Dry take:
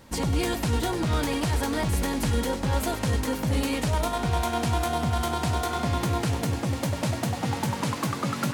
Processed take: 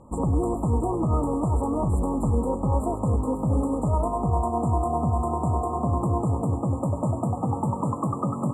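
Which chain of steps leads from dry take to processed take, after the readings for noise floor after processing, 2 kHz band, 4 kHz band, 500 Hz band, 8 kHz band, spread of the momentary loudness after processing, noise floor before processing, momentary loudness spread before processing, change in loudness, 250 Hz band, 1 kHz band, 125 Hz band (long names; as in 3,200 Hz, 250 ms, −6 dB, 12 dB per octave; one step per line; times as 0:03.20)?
−32 dBFS, below −40 dB, below −40 dB, +2.0 dB, −11.5 dB, 2 LU, −34 dBFS, 2 LU, +1.5 dB, +2.5 dB, +1.5 dB, +2.5 dB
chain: linear-phase brick-wall band-stop 1,300–7,100 Hz
high-frequency loss of the air 96 metres
level +2.5 dB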